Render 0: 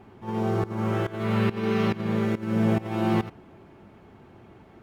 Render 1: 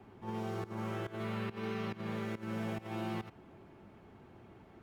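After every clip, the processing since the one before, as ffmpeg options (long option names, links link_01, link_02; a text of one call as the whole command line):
ffmpeg -i in.wav -filter_complex "[0:a]acrossover=split=120|580|1900[link_01][link_02][link_03][link_04];[link_01]acompressor=threshold=-43dB:ratio=4[link_05];[link_02]acompressor=threshold=-34dB:ratio=4[link_06];[link_03]acompressor=threshold=-39dB:ratio=4[link_07];[link_04]acompressor=threshold=-44dB:ratio=4[link_08];[link_05][link_06][link_07][link_08]amix=inputs=4:normalize=0,volume=-6dB" out.wav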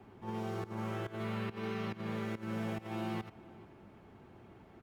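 ffmpeg -i in.wav -filter_complex "[0:a]asplit=2[link_01][link_02];[link_02]adelay=437.3,volume=-20dB,highshelf=frequency=4000:gain=-9.84[link_03];[link_01][link_03]amix=inputs=2:normalize=0" out.wav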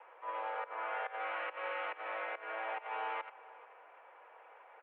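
ffmpeg -i in.wav -af "highpass=frequency=510:width_type=q:width=0.5412,highpass=frequency=510:width_type=q:width=1.307,lowpass=frequency=2600:width_type=q:width=0.5176,lowpass=frequency=2600:width_type=q:width=0.7071,lowpass=frequency=2600:width_type=q:width=1.932,afreqshift=110,volume=5.5dB" out.wav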